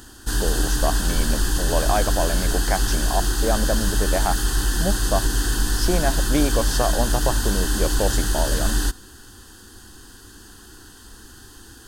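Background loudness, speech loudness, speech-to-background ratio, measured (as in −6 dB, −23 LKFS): −23.0 LKFS, −27.0 LKFS, −4.0 dB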